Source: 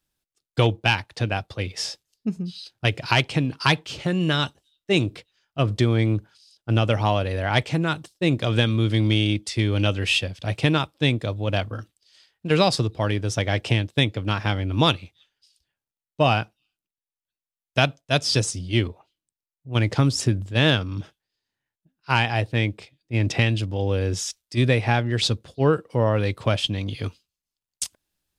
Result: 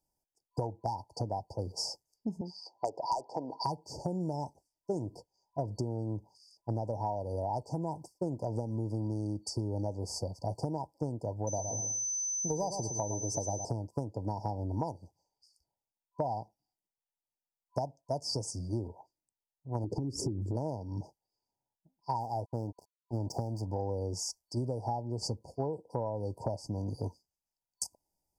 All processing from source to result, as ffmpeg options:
ffmpeg -i in.wav -filter_complex "[0:a]asettb=1/sr,asplit=3[link_01][link_02][link_03];[link_01]atrim=end=2.414[link_04];[link_02]atrim=start=2.41:end=3.64,asetpts=PTS-STARTPTS,afade=type=in:duration=0.004:curve=qsin,afade=type=out:start_time=1.226:duration=0.004:curve=qsin,highpass=540,lowpass=2700,aeval=exprs='0.473*sin(PI/2*2.51*val(0)/0.473)':channel_layout=same[link_05];[link_03]atrim=start=3.636[link_06];[link_04][link_05]acrossfade=duration=0.004:curve1=hsin:curve2=qsin[link_07];[link_07][link_06]acrossfade=duration=0.004:curve1=qsin:curve2=hsin,asettb=1/sr,asplit=3[link_08][link_09][link_10];[link_08]atrim=end=11.474[link_11];[link_09]atrim=start=11.47:end=13.65,asetpts=PTS-STARTPTS,afade=type=in:duration=0.004:curve=qsin,afade=type=out:start_time=2.176:duration=0.004:curve=qsin,asoftclip=type=hard:threshold=-11dB,aeval=exprs='val(0)+0.0562*sin(2*PI*6100*n/s)':channel_layout=same,aecho=1:1:113|226|339:0.355|0.071|0.0142,atrim=end_sample=96138[link_12];[link_10]atrim=start=13.646[link_13];[link_11][link_12]acrossfade=duration=0.004:curve1=hsin:curve2=qsin[link_14];[link_14][link_13]acrossfade=duration=0.004:curve1=qsin:curve2=hsin,asettb=1/sr,asplit=3[link_15][link_16][link_17];[link_15]atrim=end=19.844[link_18];[link_16]atrim=start=19.84:end=20.57,asetpts=PTS-STARTPTS,afade=type=in:duration=0.004:curve=qsin,afade=type=out:start_time=0.726:duration=0.004:curve=qsin,lowshelf=frequency=530:width_type=q:width=3:gain=12,acompressor=threshold=-20dB:ratio=4:attack=3.2:release=140:knee=1:detection=peak[link_19];[link_17]atrim=start=20.566[link_20];[link_18][link_19]acrossfade=duration=0.004:curve1=hsin:curve2=qsin[link_21];[link_21][link_20]acrossfade=duration=0.004:curve1=qsin:curve2=hsin,asettb=1/sr,asplit=3[link_22][link_23][link_24];[link_22]atrim=end=22.204[link_25];[link_23]atrim=start=22.2:end=23.67,asetpts=PTS-STARTPTS,afade=type=in:duration=0.004:curve=qsin,afade=type=out:start_time=1.466:duration=0.004:curve=qsin,bandreject=frequency=4200:width=14,aeval=exprs='sgn(val(0))*max(abs(val(0))-0.01,0)':channel_layout=same[link_26];[link_24]atrim=start=23.666[link_27];[link_25][link_26]acrossfade=duration=0.004:curve1=hsin:curve2=qsin[link_28];[link_28][link_27]acrossfade=duration=0.004:curve1=qsin:curve2=hsin,afftfilt=real='re*(1-between(b*sr/4096,1000,4500))':imag='im*(1-between(b*sr/4096,1000,4500))':win_size=4096:overlap=0.75,equalizer=frequency=890:width=1:gain=9.5,acompressor=threshold=-25dB:ratio=10,volume=-5.5dB" out.wav

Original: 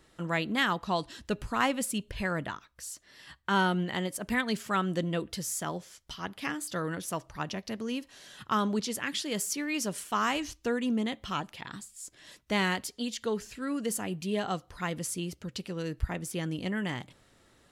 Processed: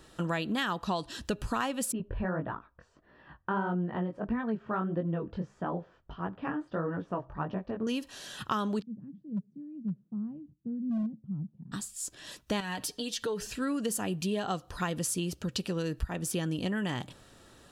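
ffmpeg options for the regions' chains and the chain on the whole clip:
ffmpeg -i in.wav -filter_complex "[0:a]asettb=1/sr,asplit=3[link_01][link_02][link_03];[link_01]atrim=end=1.924[link_04];[link_02]atrim=start=1.92:end=7.87,asetpts=PTS-STARTPTS,afade=type=in:duration=0.004:curve=qsin,afade=type=out:start_time=5.946:duration=0.004:curve=qsin,lowpass=1400,aemphasis=mode=reproduction:type=75fm,flanger=delay=16.5:depth=6.3:speed=1.6[link_05];[link_03]atrim=start=7.866[link_06];[link_04][link_05]acrossfade=duration=0.004:curve1=hsin:curve2=qsin[link_07];[link_07][link_06]acrossfade=duration=0.004:curve1=qsin:curve2=hsin,asettb=1/sr,asplit=3[link_08][link_09][link_10];[link_08]atrim=end=8.824[link_11];[link_09]atrim=start=8.82:end=11.72,asetpts=PTS-STARTPTS,afade=type=in:duration=0.004:curve=qsin,afade=type=out:start_time=2.896:duration=0.004:curve=qsin,asuperpass=centerf=170:order=4:qfactor=2.1,asoftclip=type=hard:threshold=-31.5dB[link_12];[link_10]atrim=start=11.716[link_13];[link_11][link_12]acrossfade=duration=0.004:curve1=hsin:curve2=qsin[link_14];[link_14][link_13]acrossfade=duration=0.004:curve1=qsin:curve2=hsin,asettb=1/sr,asplit=3[link_15][link_16][link_17];[link_15]atrim=end=12.604[link_18];[link_16]atrim=start=12.6:end=13.47,asetpts=PTS-STARTPTS,afade=type=in:duration=0.004:curve=qsin,afade=type=out:start_time=0.866:duration=0.004:curve=qsin,bandreject=frequency=7000:width=13,acompressor=threshold=-38dB:ratio=2.5:attack=3.2:release=140:knee=1:detection=peak,aecho=1:1:6.6:0.54,atrim=end_sample=38367[link_19];[link_17]atrim=start=13.466[link_20];[link_18][link_19]acrossfade=duration=0.004:curve1=hsin:curve2=qsin[link_21];[link_21][link_20]acrossfade=duration=0.004:curve1=qsin:curve2=hsin,bandreject=frequency=2100:width=5.5,acompressor=threshold=-35dB:ratio=5,volume=6.5dB" out.wav

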